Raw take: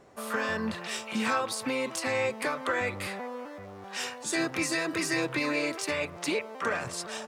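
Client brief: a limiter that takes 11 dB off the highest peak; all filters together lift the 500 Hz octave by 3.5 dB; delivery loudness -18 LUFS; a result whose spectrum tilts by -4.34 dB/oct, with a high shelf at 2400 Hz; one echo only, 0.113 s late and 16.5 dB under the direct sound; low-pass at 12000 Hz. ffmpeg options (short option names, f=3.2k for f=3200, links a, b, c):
-af "lowpass=12k,equalizer=f=500:t=o:g=4.5,highshelf=f=2.4k:g=-9,alimiter=level_in=2dB:limit=-24dB:level=0:latency=1,volume=-2dB,aecho=1:1:113:0.15,volume=17.5dB"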